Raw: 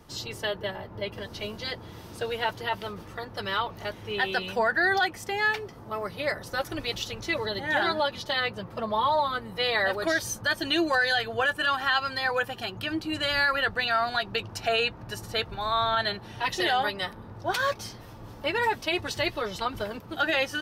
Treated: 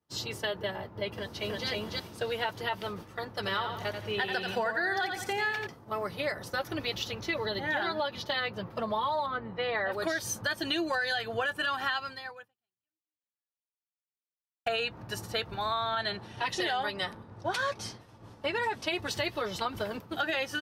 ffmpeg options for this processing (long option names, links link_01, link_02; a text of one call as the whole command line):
ffmpeg -i in.wav -filter_complex "[0:a]asplit=2[link_01][link_02];[link_02]afade=type=in:start_time=1.1:duration=0.01,afade=type=out:start_time=1.67:duration=0.01,aecho=0:1:320|640|960:1|0.1|0.01[link_03];[link_01][link_03]amix=inputs=2:normalize=0,asettb=1/sr,asplit=3[link_04][link_05][link_06];[link_04]atrim=end=3.344[link_07];[link_05]atrim=start=3.34:end=5.67,asetpts=PTS-STARTPTS,afade=type=in:duration=0.004:curve=qsin,afade=type=out:start_time=2.326:duration=0.004:curve=qsin,aecho=1:1:87|174|261|348:0.422|0.152|0.0547|0.0197,atrim=end_sample=102753[link_08];[link_06]atrim=start=5.666[link_09];[link_07][link_08]acrossfade=duration=0.004:curve1=hsin:curve2=qsin[link_10];[link_10][link_09]acrossfade=duration=0.004:curve1=qsin:curve2=hsin,asettb=1/sr,asplit=3[link_11][link_12][link_13];[link_11]atrim=end=6.564[link_14];[link_12]atrim=start=6.56:end=8.76,asetpts=PTS-STARTPTS,afade=type=in:duration=0.004:curve=qsin,afade=type=out:start_time=2.196:duration=0.004:curve=qsin,equalizer=frequency=8500:width=1.6:gain=-8.5[link_15];[link_13]atrim=start=8.756[link_16];[link_14][link_15]acrossfade=duration=0.004:curve1=hsin:curve2=qsin[link_17];[link_17][link_16]acrossfade=duration=0.004:curve1=qsin:curve2=hsin,asettb=1/sr,asplit=3[link_18][link_19][link_20];[link_18]atrim=end=9.264[link_21];[link_19]atrim=start=9.26:end=9.92,asetpts=PTS-STARTPTS,afade=type=in:duration=0.004:curve=qsin,afade=type=out:start_time=0.656:duration=0.004:curve=qsin,lowpass=2100[link_22];[link_20]atrim=start=9.916[link_23];[link_21][link_22]acrossfade=duration=0.004:curve1=hsin:curve2=qsin[link_24];[link_24][link_23]acrossfade=duration=0.004:curve1=qsin:curve2=hsin,asettb=1/sr,asplit=3[link_25][link_26][link_27];[link_25]atrim=end=16.004[link_28];[link_26]atrim=start=16:end=18.9,asetpts=PTS-STARTPTS,afade=type=in:duration=0.004:curve=qsin,afade=type=out:start_time=2.896:duration=0.004:curve=qsin,lowpass=frequency=11000:width=0.5412,lowpass=frequency=11000:width=1.3066[link_29];[link_27]atrim=start=18.896[link_30];[link_28][link_29]acrossfade=duration=0.004:curve1=hsin:curve2=qsin[link_31];[link_31][link_30]acrossfade=duration=0.004:curve1=qsin:curve2=hsin,asplit=2[link_32][link_33];[link_32]atrim=end=14.66,asetpts=PTS-STARTPTS,afade=type=out:start_time=11.89:duration=2.77:curve=exp[link_34];[link_33]atrim=start=14.66,asetpts=PTS-STARTPTS,afade=type=in:duration=0.004:curve=hsin[link_35];[link_34][link_35]concat=n=2:v=0:a=1,highpass=71,agate=range=-33dB:threshold=-38dB:ratio=3:detection=peak,acompressor=threshold=-28dB:ratio=4" out.wav